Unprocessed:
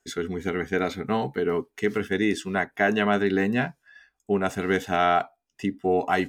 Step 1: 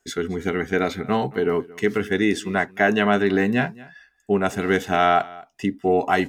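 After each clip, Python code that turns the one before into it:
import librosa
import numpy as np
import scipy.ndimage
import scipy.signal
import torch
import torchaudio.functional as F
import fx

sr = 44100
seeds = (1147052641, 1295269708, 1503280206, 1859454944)

y = x + 10.0 ** (-21.5 / 20.0) * np.pad(x, (int(224 * sr / 1000.0), 0))[:len(x)]
y = F.gain(torch.from_numpy(y), 3.5).numpy()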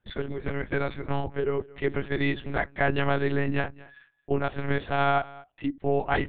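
y = fx.lpc_monotone(x, sr, seeds[0], pitch_hz=140.0, order=8)
y = F.gain(torch.from_numpy(y), -5.5).numpy()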